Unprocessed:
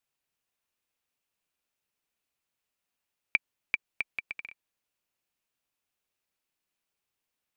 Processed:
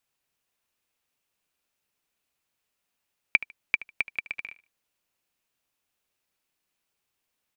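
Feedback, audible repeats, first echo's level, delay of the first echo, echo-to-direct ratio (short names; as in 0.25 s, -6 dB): 24%, 2, -17.5 dB, 75 ms, -17.5 dB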